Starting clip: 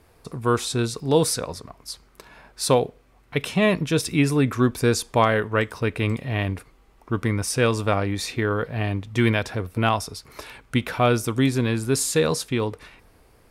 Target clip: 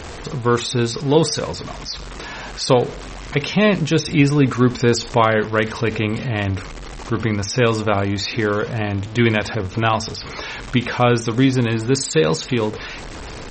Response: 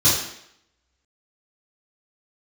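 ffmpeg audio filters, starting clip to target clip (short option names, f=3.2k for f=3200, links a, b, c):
-filter_complex "[0:a]aeval=exprs='val(0)+0.5*0.0316*sgn(val(0))':c=same,bandreject=f=224.2:t=h:w=4,bandreject=f=448.4:t=h:w=4,bandreject=f=672.6:t=h:w=4,asplit=2[a][b];[1:a]atrim=start_sample=2205,atrim=end_sample=3528[c];[b][c]afir=irnorm=-1:irlink=0,volume=-36dB[d];[a][d]amix=inputs=2:normalize=0,volume=3.5dB" -ar 48000 -c:a libmp3lame -b:a 32k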